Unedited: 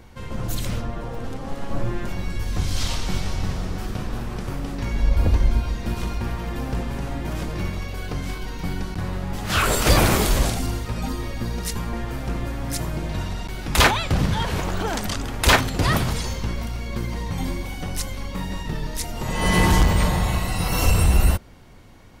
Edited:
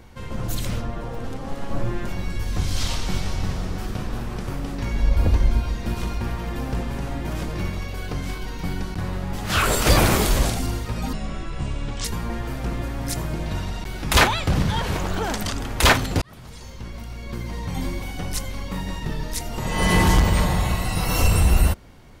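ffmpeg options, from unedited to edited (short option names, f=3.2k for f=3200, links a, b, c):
-filter_complex "[0:a]asplit=4[a][b][c][d];[a]atrim=end=11.134[e];[b]atrim=start=11.13:end=11.68,asetpts=PTS-STARTPTS,asetrate=26460,aresample=44100[f];[c]atrim=start=11.676:end=15.85,asetpts=PTS-STARTPTS,afade=t=out:st=4.17:d=0.004:c=hsin[g];[d]atrim=start=15.85,asetpts=PTS-STARTPTS,afade=t=in:d=1.72[h];[e][f]acrossfade=d=0.004:c1=hsin:c2=hsin[i];[g][h]concat=n=2:v=0:a=1[j];[i][j]acrossfade=d=0.004:c1=hsin:c2=hsin"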